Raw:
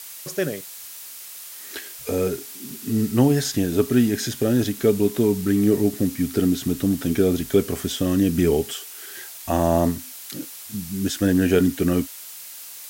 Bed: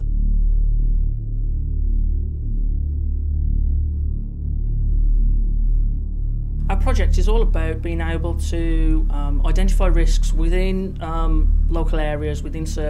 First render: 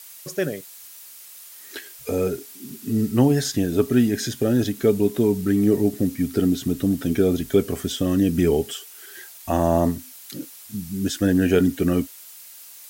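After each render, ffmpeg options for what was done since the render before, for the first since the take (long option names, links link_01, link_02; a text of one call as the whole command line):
ffmpeg -i in.wav -af "afftdn=noise_reduction=6:noise_floor=-39" out.wav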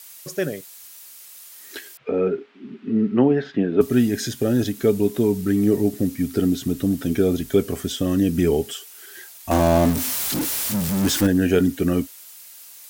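ffmpeg -i in.wav -filter_complex "[0:a]asettb=1/sr,asplit=3[link_01][link_02][link_03];[link_01]atrim=end=1.974[link_04];[link_02]atrim=start=1.97:end=3.81,asetpts=PTS-STARTPTS,afade=type=in:duration=0.004:curve=qsin,afade=type=out:start_time=1.836:duration=0.004:curve=qsin,highpass=200,equalizer=frequency=200:width_type=q:width=4:gain=7,equalizer=frequency=400:width_type=q:width=4:gain=5,equalizer=frequency=1300:width_type=q:width=4:gain=3,lowpass=frequency=2800:width=0.5412,lowpass=frequency=2800:width=1.3066[link_05];[link_03]atrim=start=3.806[link_06];[link_04][link_05]acrossfade=duration=0.004:curve1=hsin:curve2=qsin[link_07];[link_07][link_06]acrossfade=duration=0.004:curve1=qsin:curve2=hsin,asettb=1/sr,asplit=3[link_08][link_09][link_10];[link_08]atrim=end=9.514[link_11];[link_09]atrim=start=9.51:end=11.27,asetpts=PTS-STARTPTS,afade=type=in:duration=0.004:curve=qsin,afade=type=out:start_time=1.756:duration=0.004:curve=qsin,aeval=exprs='val(0)+0.5*0.1*sgn(val(0))':channel_layout=same[link_12];[link_10]atrim=start=11.266[link_13];[link_11][link_12]acrossfade=duration=0.004:curve1=hsin:curve2=qsin[link_14];[link_14][link_13]acrossfade=duration=0.004:curve1=qsin:curve2=hsin" out.wav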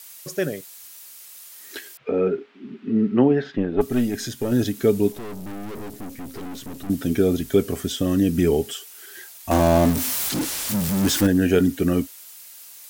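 ffmpeg -i in.wav -filter_complex "[0:a]asettb=1/sr,asplit=3[link_01][link_02][link_03];[link_01]atrim=end=3.564[link_04];[link_02]atrim=start=3.56:end=4.52,asetpts=PTS-STARTPTS,afade=type=in:duration=0.004:curve=qsin,afade=type=out:start_time=0.956:duration=0.004:curve=qsin,aeval=exprs='(tanh(2.82*val(0)+0.6)-tanh(0.6))/2.82':channel_layout=same[link_05];[link_03]atrim=start=4.516[link_06];[link_04][link_05]acrossfade=duration=0.004:curve1=hsin:curve2=qsin[link_07];[link_07][link_06]acrossfade=duration=0.004:curve1=qsin:curve2=hsin,asettb=1/sr,asplit=3[link_08][link_09][link_10];[link_08]atrim=end=5.124[link_11];[link_09]atrim=start=5.12:end=6.9,asetpts=PTS-STARTPTS,afade=type=in:duration=0.004:curve=qsin,afade=type=out:start_time=1.776:duration=0.004:curve=qsin,aeval=exprs='(tanh(44.7*val(0)+0.7)-tanh(0.7))/44.7':channel_layout=same[link_12];[link_10]atrim=start=6.896[link_13];[link_11][link_12]acrossfade=duration=0.004:curve1=hsin:curve2=qsin[link_14];[link_14][link_13]acrossfade=duration=0.004:curve1=qsin:curve2=hsin,asettb=1/sr,asplit=3[link_15][link_16][link_17];[link_15]atrim=end=10.294[link_18];[link_16]atrim=start=10.29:end=10.69,asetpts=PTS-STARTPTS,afade=type=in:duration=0.004:curve=qsin,afade=type=out:start_time=0.396:duration=0.004:curve=qsin,acrossover=split=9800[link_19][link_20];[link_20]acompressor=threshold=-33dB:ratio=4:attack=1:release=60[link_21];[link_19][link_21]amix=inputs=2:normalize=0[link_22];[link_17]atrim=start=10.686[link_23];[link_18][link_22]acrossfade=duration=0.004:curve1=hsin:curve2=qsin[link_24];[link_24][link_23]acrossfade=duration=0.004:curve1=qsin:curve2=hsin" out.wav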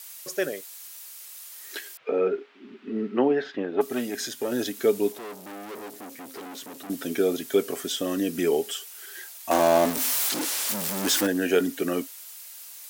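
ffmpeg -i in.wav -af "highpass=400" out.wav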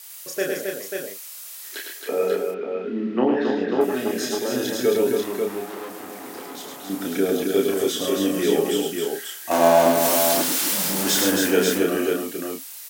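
ffmpeg -i in.wav -filter_complex "[0:a]asplit=2[link_01][link_02];[link_02]adelay=31,volume=-3dB[link_03];[link_01][link_03]amix=inputs=2:normalize=0,aecho=1:1:106|270|540:0.631|0.562|0.562" out.wav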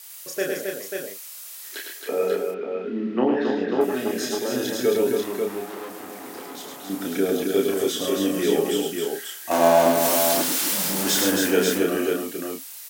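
ffmpeg -i in.wav -af "volume=-1dB" out.wav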